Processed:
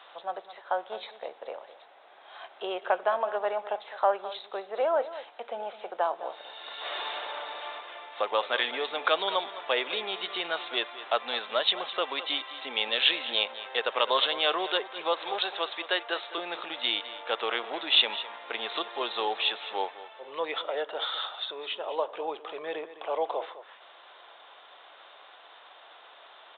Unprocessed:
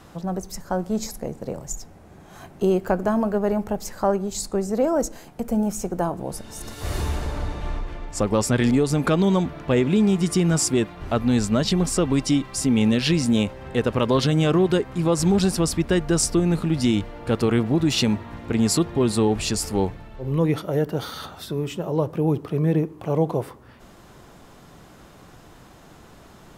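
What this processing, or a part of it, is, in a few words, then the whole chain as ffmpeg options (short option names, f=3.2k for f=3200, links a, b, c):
musical greeting card: -filter_complex "[0:a]asettb=1/sr,asplit=3[a][b][c];[a]atrim=end=15.134[d];[b]atrim=start=15.13:end=16.38,asetpts=PTS-STARTPTS,afade=t=in:d=0.004:c=qsin,afade=t=out:st=1.246:d=0.004:c=qsin,highpass=290[e];[c]atrim=start=16.376[f];[d][e]acrossfade=d=0.004:c1=hsin:c2=qsin[g];[g][f]acrossfade=d=0.004:c1=qsin:c2=hsin,aecho=1:1:209:0.188,aresample=8000,aresample=44100,highpass=f=600:w=0.5412,highpass=f=600:w=1.3066,equalizer=f=3.7k:t=o:w=0.56:g=9.5"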